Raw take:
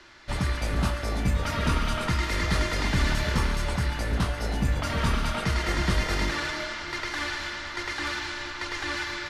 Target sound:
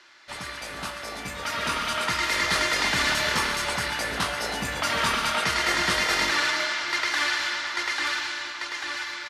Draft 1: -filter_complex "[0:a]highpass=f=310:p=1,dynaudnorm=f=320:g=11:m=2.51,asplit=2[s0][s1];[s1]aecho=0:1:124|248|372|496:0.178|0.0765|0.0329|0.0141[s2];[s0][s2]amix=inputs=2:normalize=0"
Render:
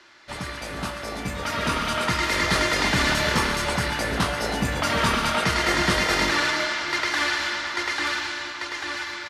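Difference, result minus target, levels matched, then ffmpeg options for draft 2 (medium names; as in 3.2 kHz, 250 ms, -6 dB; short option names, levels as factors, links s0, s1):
250 Hz band +6.5 dB
-filter_complex "[0:a]highpass=f=990:p=1,dynaudnorm=f=320:g=11:m=2.51,asplit=2[s0][s1];[s1]aecho=0:1:124|248|372|496:0.178|0.0765|0.0329|0.0141[s2];[s0][s2]amix=inputs=2:normalize=0"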